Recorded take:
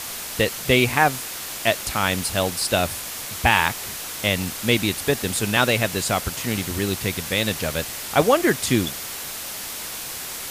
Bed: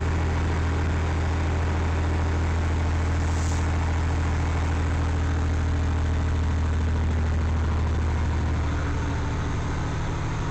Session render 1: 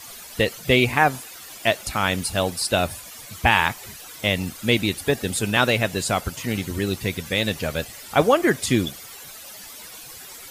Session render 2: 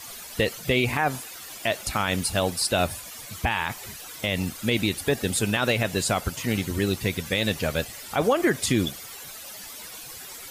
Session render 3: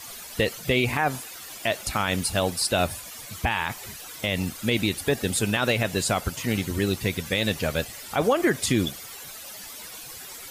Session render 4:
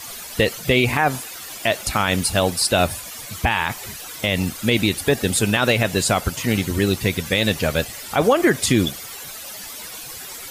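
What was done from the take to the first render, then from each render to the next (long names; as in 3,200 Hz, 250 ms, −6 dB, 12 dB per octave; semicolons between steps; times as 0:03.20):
broadband denoise 13 dB, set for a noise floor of −33 dBFS
brickwall limiter −12 dBFS, peak gain reduction 10 dB
no processing that can be heard
level +5.5 dB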